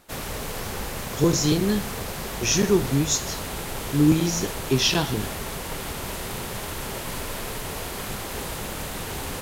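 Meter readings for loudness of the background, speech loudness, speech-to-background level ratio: -31.5 LUFS, -23.0 LUFS, 8.5 dB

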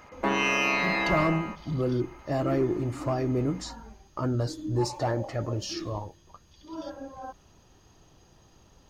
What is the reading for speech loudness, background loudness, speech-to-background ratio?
-30.5 LUFS, -26.0 LUFS, -4.5 dB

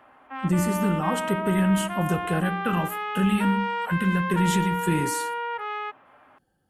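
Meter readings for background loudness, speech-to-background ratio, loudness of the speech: -30.0 LUFS, 4.5 dB, -25.5 LUFS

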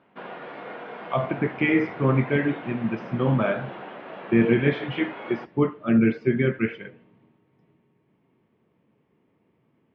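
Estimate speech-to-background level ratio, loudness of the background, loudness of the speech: 15.0 dB, -39.0 LUFS, -24.0 LUFS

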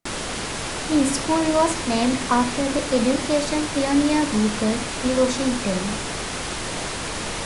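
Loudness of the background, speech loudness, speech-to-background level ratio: -27.5 LUFS, -22.5 LUFS, 5.0 dB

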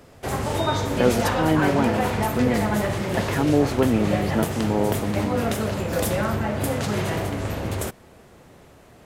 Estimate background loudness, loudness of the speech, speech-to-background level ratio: -25.0 LUFS, -24.5 LUFS, 0.5 dB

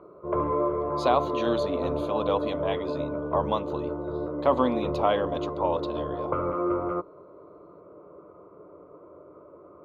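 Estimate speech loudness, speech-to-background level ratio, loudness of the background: -29.0 LUFS, 1.0 dB, -30.0 LUFS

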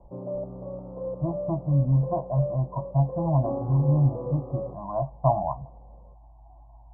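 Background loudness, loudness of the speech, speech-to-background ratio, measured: -35.0 LUFS, -26.5 LUFS, 8.5 dB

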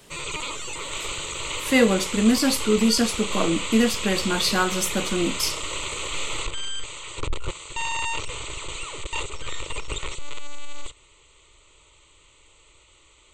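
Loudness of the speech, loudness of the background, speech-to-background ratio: -22.0 LUFS, -30.0 LUFS, 8.0 dB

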